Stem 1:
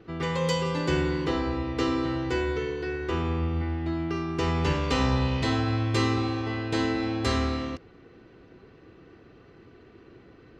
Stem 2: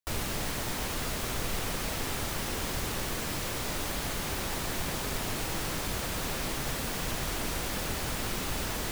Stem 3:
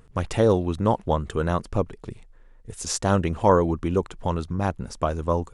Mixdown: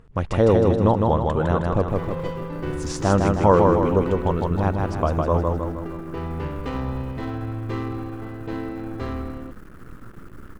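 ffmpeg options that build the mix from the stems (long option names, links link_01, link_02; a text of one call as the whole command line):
ffmpeg -i stem1.wav -i stem2.wav -i stem3.wav -filter_complex "[0:a]adynamicsmooth=sensitivity=1:basefreq=1100,adelay=1750,volume=-3dB[link_01];[1:a]firequalizer=gain_entry='entry(330,0);entry(650,-27);entry(1300,0);entry(2700,-29);entry(9400,-21)':delay=0.05:min_phase=1,aeval=exprs='max(val(0),0)':channel_layout=same,adelay=1800,volume=-2.5dB,asplit=2[link_02][link_03];[link_03]volume=-11dB[link_04];[2:a]lowpass=frequency=2200:poles=1,volume=2dB,asplit=2[link_05][link_06];[link_06]volume=-3dB[link_07];[link_04][link_07]amix=inputs=2:normalize=0,aecho=0:1:157|314|471|628|785|942|1099|1256:1|0.52|0.27|0.141|0.0731|0.038|0.0198|0.0103[link_08];[link_01][link_02][link_05][link_08]amix=inputs=4:normalize=0" out.wav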